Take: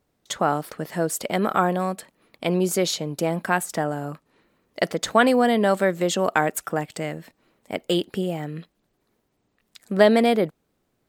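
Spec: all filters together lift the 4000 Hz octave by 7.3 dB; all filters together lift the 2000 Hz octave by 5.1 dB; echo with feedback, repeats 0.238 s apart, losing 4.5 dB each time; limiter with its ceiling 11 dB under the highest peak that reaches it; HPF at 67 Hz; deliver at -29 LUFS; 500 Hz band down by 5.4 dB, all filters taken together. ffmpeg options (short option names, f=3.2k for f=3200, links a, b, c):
-af "highpass=67,equalizer=f=500:t=o:g=-7.5,equalizer=f=2k:t=o:g=5.5,equalizer=f=4k:t=o:g=7.5,alimiter=limit=-12dB:level=0:latency=1,aecho=1:1:238|476|714|952|1190|1428|1666|1904|2142:0.596|0.357|0.214|0.129|0.0772|0.0463|0.0278|0.0167|0.01,volume=-4.5dB"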